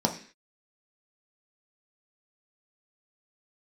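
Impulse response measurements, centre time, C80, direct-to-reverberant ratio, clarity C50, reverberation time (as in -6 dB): 13 ms, 15.5 dB, 1.5 dB, 11.0 dB, 0.45 s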